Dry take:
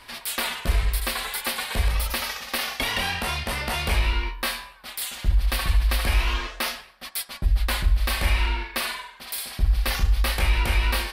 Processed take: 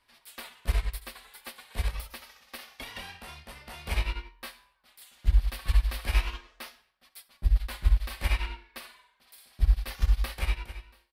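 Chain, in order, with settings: fade out at the end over 0.75 s; feedback delay 66 ms, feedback 38%, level -16.5 dB; upward expansion 2.5:1, over -30 dBFS

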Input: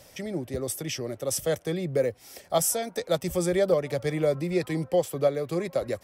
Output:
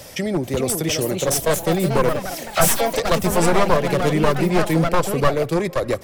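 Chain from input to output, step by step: one-sided wavefolder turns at -25.5 dBFS; wow and flutter 28 cents; in parallel at +1 dB: compression, threshold -36 dBFS, peak gain reduction 16.5 dB; 2.09–2.90 s: on the sum: phase dispersion lows, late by 60 ms, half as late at 1.6 kHz; ever faster or slower copies 435 ms, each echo +3 st, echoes 3, each echo -6 dB; on a send at -21 dB: reverberation RT60 0.95 s, pre-delay 6 ms; on the sum: attacks held to a fixed rise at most 510 dB/s; trim +6.5 dB

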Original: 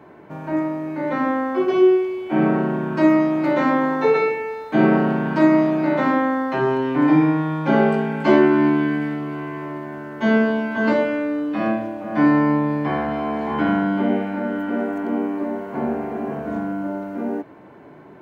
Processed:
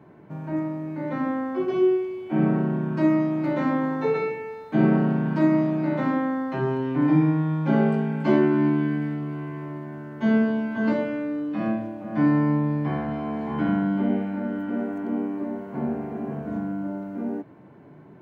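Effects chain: peaking EQ 140 Hz +11 dB 1.8 oct; trim -9 dB

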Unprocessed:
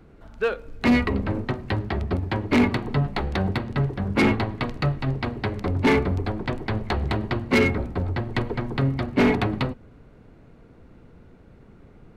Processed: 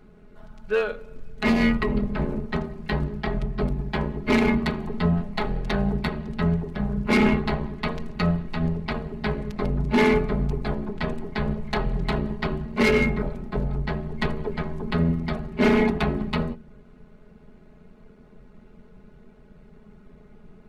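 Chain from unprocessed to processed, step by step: bass shelf 180 Hz +3.5 dB; hum notches 60/120/180/240/300/360 Hz; granular stretch 1.7×, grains 23 ms

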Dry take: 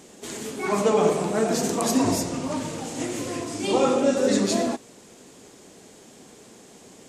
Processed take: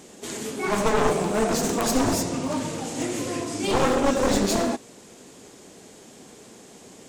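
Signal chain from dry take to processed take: one-sided wavefolder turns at -21.5 dBFS; trim +1.5 dB

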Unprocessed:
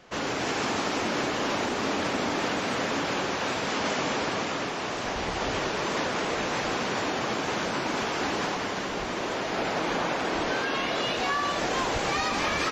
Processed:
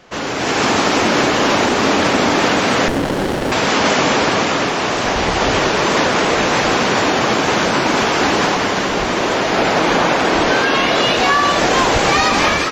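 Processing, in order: level rider gain up to 6.5 dB; 2.88–3.52 s: sliding maximum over 33 samples; trim +7 dB

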